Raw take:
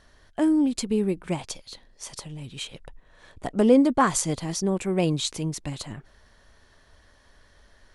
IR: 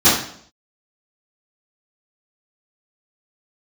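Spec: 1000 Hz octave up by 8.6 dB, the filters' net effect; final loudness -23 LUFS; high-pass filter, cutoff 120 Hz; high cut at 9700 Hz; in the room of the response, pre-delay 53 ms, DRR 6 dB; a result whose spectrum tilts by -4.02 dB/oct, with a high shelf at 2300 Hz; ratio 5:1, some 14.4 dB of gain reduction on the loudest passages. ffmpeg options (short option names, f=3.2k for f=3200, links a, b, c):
-filter_complex "[0:a]highpass=120,lowpass=9.7k,equalizer=f=1k:t=o:g=9,highshelf=f=2.3k:g=6,acompressor=threshold=-25dB:ratio=5,asplit=2[a][b];[1:a]atrim=start_sample=2205,adelay=53[c];[b][c]afir=irnorm=-1:irlink=0,volume=-30dB[d];[a][d]amix=inputs=2:normalize=0,volume=5.5dB"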